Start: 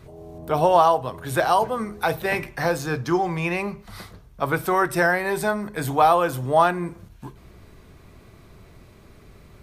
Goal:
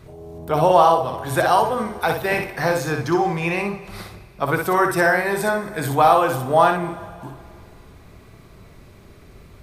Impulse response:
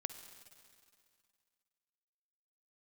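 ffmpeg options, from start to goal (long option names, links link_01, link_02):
-filter_complex "[0:a]asplit=2[link_01][link_02];[1:a]atrim=start_sample=2205,adelay=60[link_03];[link_02][link_03]afir=irnorm=-1:irlink=0,volume=-3dB[link_04];[link_01][link_04]amix=inputs=2:normalize=0,volume=1.5dB"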